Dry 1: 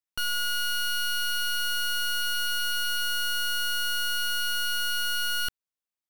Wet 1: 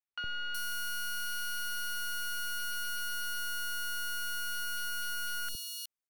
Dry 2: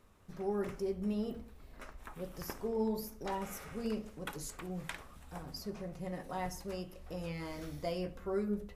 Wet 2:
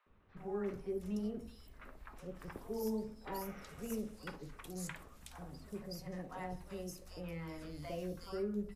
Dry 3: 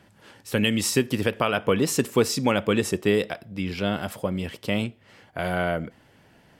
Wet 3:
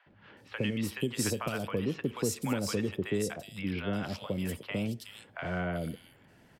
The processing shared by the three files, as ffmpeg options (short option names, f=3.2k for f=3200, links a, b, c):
-filter_complex "[0:a]acrossover=split=110|260[a][b][c];[a]acompressor=threshold=-37dB:ratio=4[d];[b]acompressor=threshold=-32dB:ratio=4[e];[c]acompressor=threshold=-28dB:ratio=4[f];[d][e][f]amix=inputs=3:normalize=0,acrossover=split=750|3400[g][h][i];[g]adelay=60[j];[i]adelay=370[k];[j][h][k]amix=inputs=3:normalize=0,volume=-3dB"